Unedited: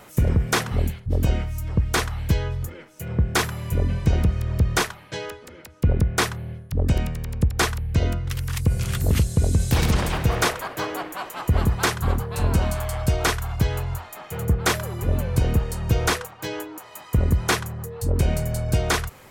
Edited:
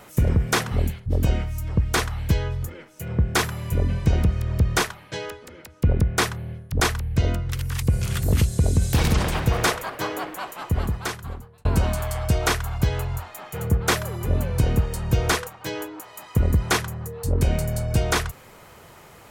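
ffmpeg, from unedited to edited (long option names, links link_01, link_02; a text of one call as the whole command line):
ffmpeg -i in.wav -filter_complex "[0:a]asplit=3[link_01][link_02][link_03];[link_01]atrim=end=6.802[link_04];[link_02]atrim=start=7.578:end=12.43,asetpts=PTS-STARTPTS,afade=type=out:start_time=3.532:duration=1.32[link_05];[link_03]atrim=start=12.43,asetpts=PTS-STARTPTS,afade=type=in:duration=0.004:curve=hsin[link_06];[link_05][link_06]concat=n=2:v=0:a=1[link_07];[link_04][link_07]acrossfade=duration=0.004:curve1=hsin:curve2=hsin" out.wav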